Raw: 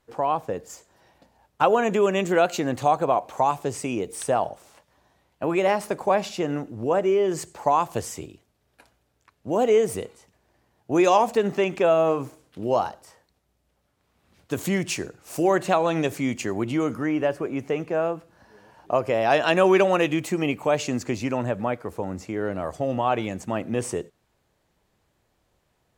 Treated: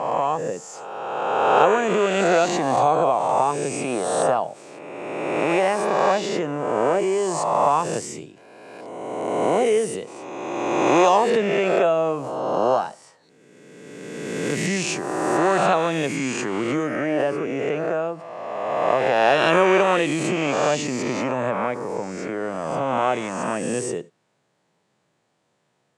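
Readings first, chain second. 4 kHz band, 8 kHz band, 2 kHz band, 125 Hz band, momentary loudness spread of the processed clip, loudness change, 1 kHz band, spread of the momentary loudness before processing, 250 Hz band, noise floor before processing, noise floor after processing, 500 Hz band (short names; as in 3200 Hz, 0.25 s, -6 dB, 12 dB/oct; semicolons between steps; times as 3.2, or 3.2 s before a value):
+4.0 dB, +5.0 dB, +5.0 dB, 0.0 dB, 15 LU, +2.5 dB, +4.0 dB, 11 LU, +1.0 dB, -71 dBFS, -69 dBFS, +2.5 dB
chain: spectral swells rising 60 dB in 1.74 s; Chebyshev band-pass 140–8700 Hz, order 3; backwards sustainer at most 28 dB/s; gain -1.5 dB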